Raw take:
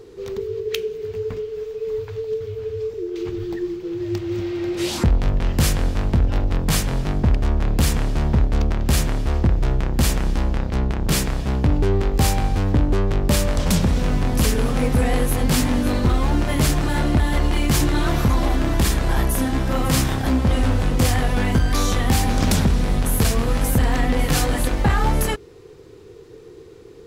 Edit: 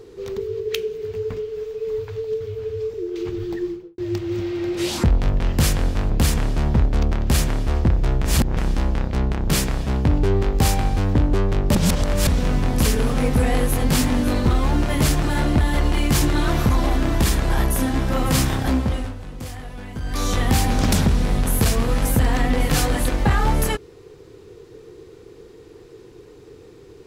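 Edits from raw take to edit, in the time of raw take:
3.64–3.98 studio fade out
6.1–7.69 cut
9.84–10.16 reverse
13.34–13.86 reverse
20.29–21.98 dip -15 dB, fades 0.44 s

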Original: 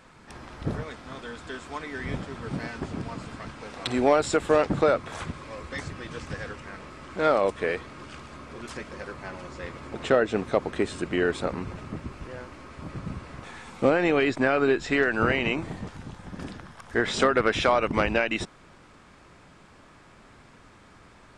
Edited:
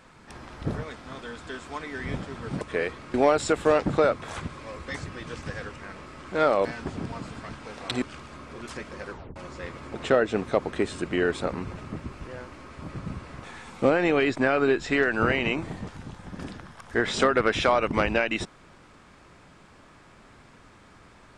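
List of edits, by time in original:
2.61–3.98 swap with 7.49–8.02
9.11 tape stop 0.25 s

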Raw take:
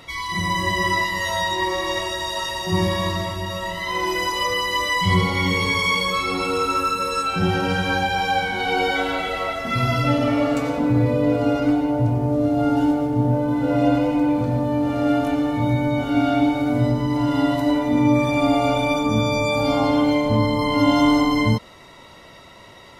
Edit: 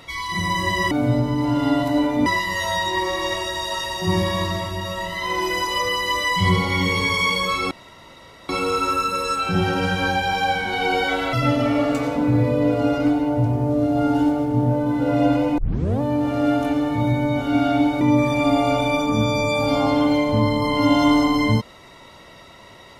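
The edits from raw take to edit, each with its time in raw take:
6.36 insert room tone 0.78 s
9.2–9.95 cut
14.2 tape start 0.43 s
16.63–17.98 move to 0.91

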